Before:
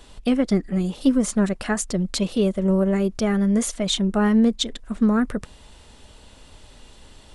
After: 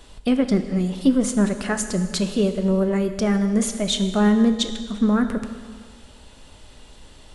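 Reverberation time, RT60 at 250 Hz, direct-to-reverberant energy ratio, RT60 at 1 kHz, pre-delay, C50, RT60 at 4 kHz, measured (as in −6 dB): 1.8 s, 1.8 s, 7.5 dB, 1.8 s, 6 ms, 9.0 dB, 1.7 s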